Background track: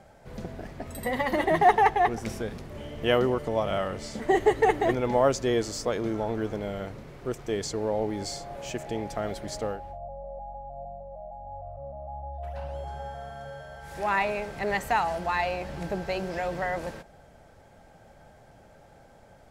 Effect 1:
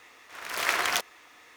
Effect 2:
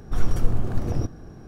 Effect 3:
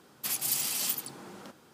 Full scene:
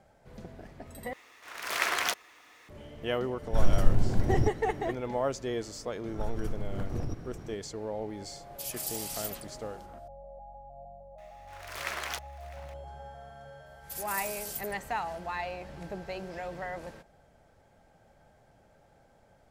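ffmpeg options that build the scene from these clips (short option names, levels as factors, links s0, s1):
-filter_complex "[1:a]asplit=2[s0][s1];[2:a]asplit=2[s2][s3];[3:a]asplit=2[s4][s5];[0:a]volume=0.398[s6];[s2]asuperstop=centerf=1200:order=4:qfactor=6.8[s7];[s3]acompressor=threshold=0.0501:ratio=6:attack=3.2:release=140:knee=1:detection=peak[s8];[s4]acrossover=split=2600[s9][s10];[s9]adelay=130[s11];[s11][s10]amix=inputs=2:normalize=0[s12];[s1]aecho=1:1:653:0.0891[s13];[s5]highshelf=f=5100:g=12[s14];[s6]asplit=2[s15][s16];[s15]atrim=end=1.134[s17];[s0]atrim=end=1.56,asetpts=PTS-STARTPTS,volume=0.75[s18];[s16]atrim=start=2.686[s19];[s7]atrim=end=1.47,asetpts=PTS-STARTPTS,volume=0.841,afade=t=in:d=0.004:c=hsin,afade=t=out:st=1.466:d=0.004:c=hsin,adelay=3420[s20];[s8]atrim=end=1.47,asetpts=PTS-STARTPTS,volume=0.794,afade=t=in:d=0.004:c=hsin,afade=t=out:st=1.466:d=0.004:c=hsin,adelay=6080[s21];[s12]atrim=end=1.73,asetpts=PTS-STARTPTS,volume=0.473,afade=t=in:d=0.004:c=hsin,afade=t=out:st=1.726:d=0.004:c=hsin,adelay=8350[s22];[s13]atrim=end=1.56,asetpts=PTS-STARTPTS,volume=0.335,afade=t=in:d=0.004:c=hsin,afade=t=out:st=1.556:d=0.004:c=hsin,adelay=11180[s23];[s14]atrim=end=1.73,asetpts=PTS-STARTPTS,volume=0.126,afade=t=in:d=0.004:c=hsin,afade=t=out:st=1.726:d=0.004:c=hsin,adelay=13660[s24];[s17][s18]acrossfade=d=0.004:c1=hsin:c2=hsin[s25];[s25][s19]acrossfade=d=0.004:c1=hsin:c2=hsin[s26];[s26][s20][s21][s22][s23][s24]amix=inputs=6:normalize=0"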